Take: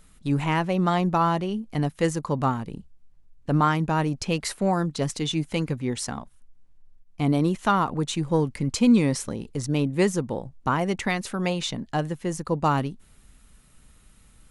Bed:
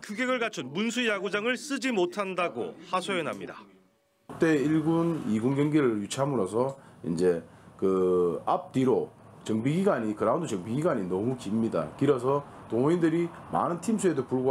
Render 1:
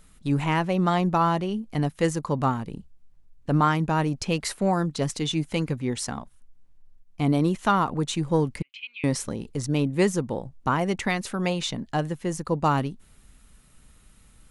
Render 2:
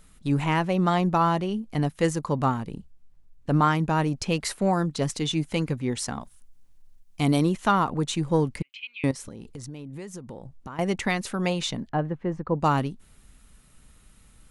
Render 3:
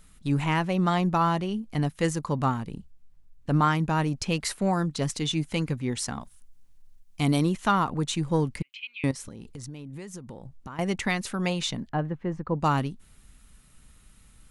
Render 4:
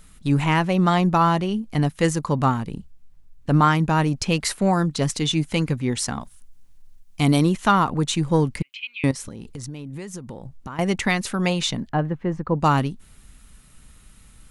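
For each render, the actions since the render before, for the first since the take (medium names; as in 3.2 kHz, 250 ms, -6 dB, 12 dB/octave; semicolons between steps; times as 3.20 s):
8.62–9.04 s: Butterworth band-pass 2.7 kHz, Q 3.3
6.20–7.43 s: treble shelf 4 kHz -> 2.6 kHz +11 dB; 9.11–10.79 s: compression 8:1, threshold -35 dBFS; 11.89–12.60 s: low-pass 1.6 kHz
peaking EQ 510 Hz -3.5 dB 1.9 oct
trim +5.5 dB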